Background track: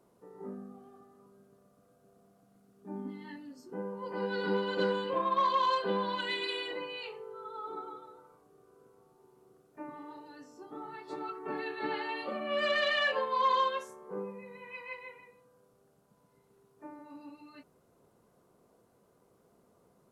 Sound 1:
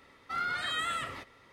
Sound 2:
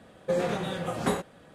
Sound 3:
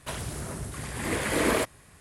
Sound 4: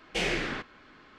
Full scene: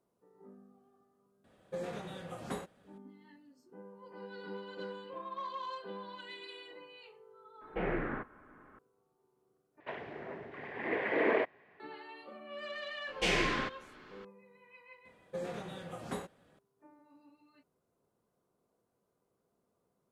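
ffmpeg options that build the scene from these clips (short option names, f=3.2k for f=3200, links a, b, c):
-filter_complex "[2:a]asplit=2[a][b];[4:a]asplit=2[c][d];[0:a]volume=-13dB[e];[c]lowpass=f=1.6k:w=0.5412,lowpass=f=1.6k:w=1.3066[f];[3:a]highpass=300,equalizer=f=420:t=q:w=4:g=6,equalizer=f=720:t=q:w=4:g=4,equalizer=f=1.3k:t=q:w=4:g=-7,equalizer=f=1.9k:t=q:w=4:g=5,lowpass=f=2.5k:w=0.5412,lowpass=f=2.5k:w=1.3066[g];[e]asplit=2[h][i];[h]atrim=end=9.804[j];[g]atrim=end=2,asetpts=PTS-STARTPTS,volume=-5dB[k];[i]atrim=start=11.796[l];[a]atrim=end=1.54,asetpts=PTS-STARTPTS,volume=-12.5dB,afade=t=in:d=0.004:c=hsin,afade=t=out:st=1.536:d=0.004:c=hsin,adelay=1440[m];[f]atrim=end=1.18,asetpts=PTS-STARTPTS,volume=-2dB,afade=t=in:d=0.004:c=hsin,afade=t=out:st=1.176:d=0.004:c=hsin,adelay=7610[n];[d]atrim=end=1.18,asetpts=PTS-STARTPTS,volume=-1dB,afade=t=in:d=0.004:c=hsin,afade=t=out:st=1.176:d=0.004:c=hsin,adelay=13070[o];[b]atrim=end=1.54,asetpts=PTS-STARTPTS,volume=-12.5dB,afade=t=in:d=0.004:c=hsin,afade=t=out:st=1.536:d=0.004:c=hsin,adelay=15050[p];[j][k]acrossfade=d=0.004:c1=hsin:c2=hsin[q];[q][l]acrossfade=d=0.004:c1=hsin:c2=hsin[r];[r][m][n][o][p]amix=inputs=5:normalize=0"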